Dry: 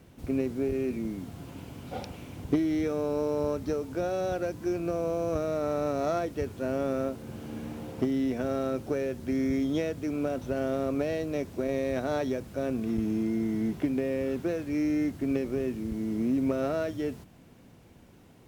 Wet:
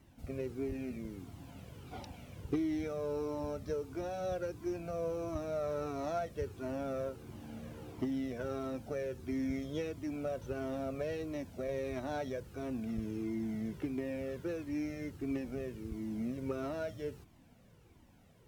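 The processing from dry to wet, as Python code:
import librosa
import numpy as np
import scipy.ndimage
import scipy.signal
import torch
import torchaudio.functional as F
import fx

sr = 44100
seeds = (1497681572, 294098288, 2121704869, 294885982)

y = fx.comb_cascade(x, sr, direction='falling', hz=1.5)
y = y * librosa.db_to_amplitude(-3.0)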